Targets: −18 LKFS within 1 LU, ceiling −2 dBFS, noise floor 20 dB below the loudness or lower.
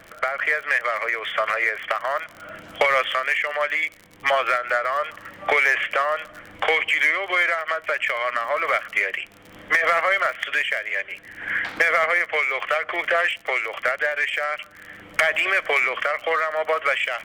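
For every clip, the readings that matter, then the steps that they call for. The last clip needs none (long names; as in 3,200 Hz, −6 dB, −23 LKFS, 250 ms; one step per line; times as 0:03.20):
crackle rate 48 per second; integrated loudness −22.0 LKFS; sample peak −8.0 dBFS; target loudness −18.0 LKFS
→ click removal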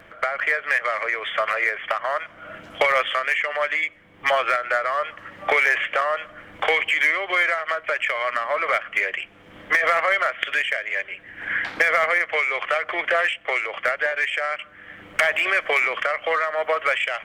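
crackle rate 0.70 per second; integrated loudness −22.0 LKFS; sample peak −3.0 dBFS; target loudness −18.0 LKFS
→ level +4 dB
brickwall limiter −2 dBFS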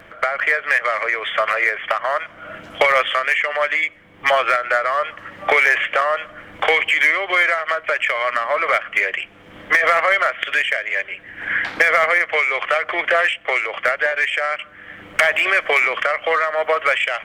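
integrated loudness −18.0 LKFS; sample peak −2.0 dBFS; background noise floor −44 dBFS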